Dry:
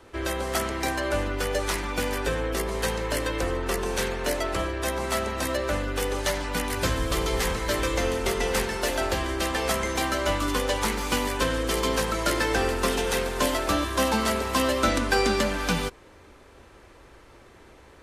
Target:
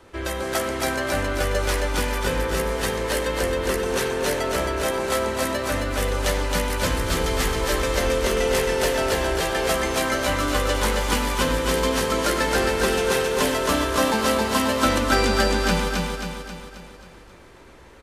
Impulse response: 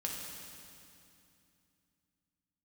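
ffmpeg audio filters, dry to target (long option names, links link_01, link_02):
-filter_complex "[0:a]aecho=1:1:268|536|804|1072|1340|1608|1876:0.708|0.368|0.191|0.0995|0.0518|0.0269|0.014,asplit=2[link_01][link_02];[1:a]atrim=start_sample=2205,atrim=end_sample=6174[link_03];[link_02][link_03]afir=irnorm=-1:irlink=0,volume=-7.5dB[link_04];[link_01][link_04]amix=inputs=2:normalize=0,volume=-1.5dB"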